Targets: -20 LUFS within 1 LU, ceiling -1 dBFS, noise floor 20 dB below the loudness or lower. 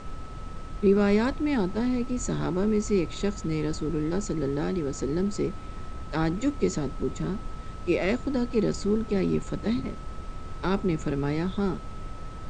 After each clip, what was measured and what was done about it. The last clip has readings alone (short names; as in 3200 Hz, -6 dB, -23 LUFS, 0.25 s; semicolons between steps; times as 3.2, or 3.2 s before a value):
steady tone 1300 Hz; tone level -46 dBFS; noise floor -38 dBFS; noise floor target -48 dBFS; loudness -28.0 LUFS; peak -11.0 dBFS; loudness target -20.0 LUFS
-> notch 1300 Hz, Q 30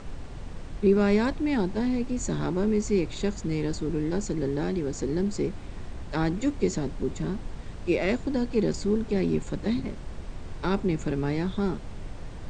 steady tone none; noise floor -39 dBFS; noise floor target -48 dBFS
-> noise print and reduce 9 dB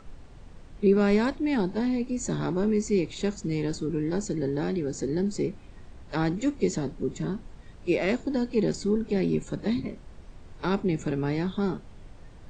noise floor -47 dBFS; noise floor target -48 dBFS
-> noise print and reduce 6 dB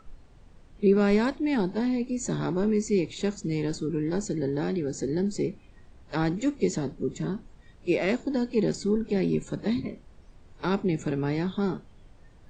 noise floor -53 dBFS; loudness -28.0 LUFS; peak -11.5 dBFS; loudness target -20.0 LUFS
-> gain +8 dB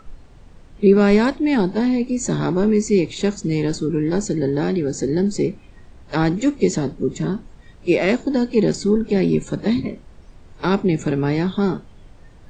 loudness -20.0 LUFS; peak -3.5 dBFS; noise floor -45 dBFS